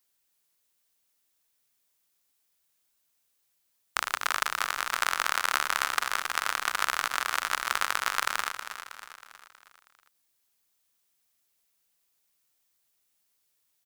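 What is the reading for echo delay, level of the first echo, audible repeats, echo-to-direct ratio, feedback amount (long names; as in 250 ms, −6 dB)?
319 ms, −10.0 dB, 5, −9.0 dB, 50%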